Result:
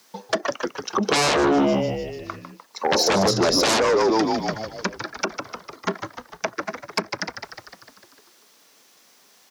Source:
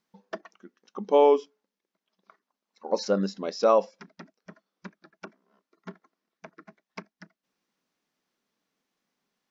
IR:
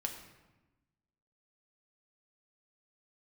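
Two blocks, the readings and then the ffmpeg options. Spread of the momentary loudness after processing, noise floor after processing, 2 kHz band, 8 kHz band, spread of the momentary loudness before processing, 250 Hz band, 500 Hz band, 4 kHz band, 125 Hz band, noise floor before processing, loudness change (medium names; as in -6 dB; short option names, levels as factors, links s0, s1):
18 LU, -56 dBFS, +19.5 dB, no reading, 22 LU, +11.0 dB, +3.5 dB, +18.5 dB, +11.5 dB, under -85 dBFS, +1.5 dB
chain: -filter_complex "[0:a]asplit=2[s0][s1];[s1]asplit=8[s2][s3][s4][s5][s6][s7][s8][s9];[s2]adelay=150,afreqshift=-76,volume=0.316[s10];[s3]adelay=300,afreqshift=-152,volume=0.195[s11];[s4]adelay=450,afreqshift=-228,volume=0.122[s12];[s5]adelay=600,afreqshift=-304,volume=0.075[s13];[s6]adelay=750,afreqshift=-380,volume=0.0468[s14];[s7]adelay=900,afreqshift=-456,volume=0.0288[s15];[s8]adelay=1050,afreqshift=-532,volume=0.018[s16];[s9]adelay=1200,afreqshift=-608,volume=0.0111[s17];[s10][s11][s12][s13][s14][s15][s16][s17]amix=inputs=8:normalize=0[s18];[s0][s18]amix=inputs=2:normalize=0,aeval=exprs='0.398*sin(PI/2*8.91*val(0)/0.398)':c=same,acrossover=split=310|950[s19][s20][s21];[s19]highpass=72[s22];[s20]alimiter=limit=0.178:level=0:latency=1[s23];[s21]acompressor=threshold=0.0501:ratio=5[s24];[s22][s23][s24]amix=inputs=3:normalize=0,bass=f=250:g=-14,treble=f=4000:g=8"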